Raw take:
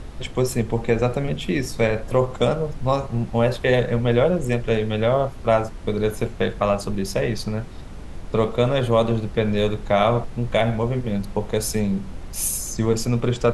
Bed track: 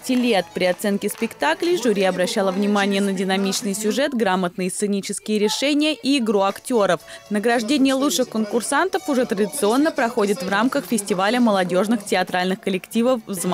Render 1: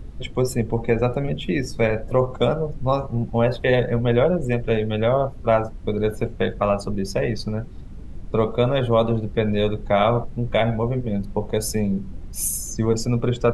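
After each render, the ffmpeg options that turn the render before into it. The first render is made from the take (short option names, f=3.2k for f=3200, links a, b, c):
-af "afftdn=nr=12:nf=-35"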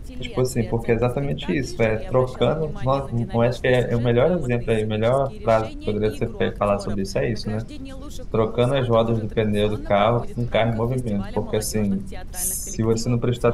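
-filter_complex "[1:a]volume=-20.5dB[a];[0:a][a]amix=inputs=2:normalize=0"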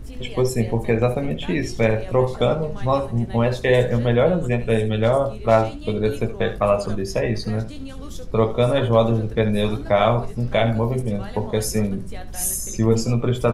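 -filter_complex "[0:a]asplit=2[a][b];[b]adelay=18,volume=-7dB[c];[a][c]amix=inputs=2:normalize=0,aecho=1:1:72:0.211"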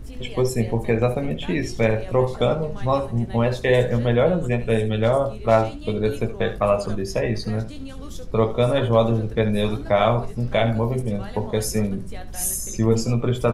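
-af "volume=-1dB"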